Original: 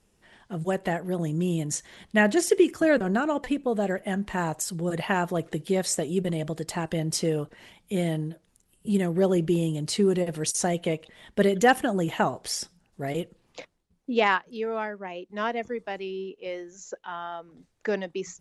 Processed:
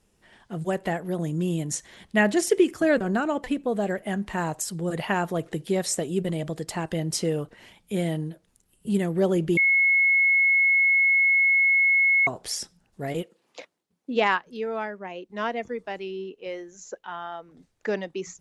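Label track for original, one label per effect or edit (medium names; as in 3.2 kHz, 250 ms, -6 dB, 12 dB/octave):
9.570000	12.270000	bleep 2.18 kHz -16.5 dBFS
13.220000	14.150000	high-pass 360 Hz -> 180 Hz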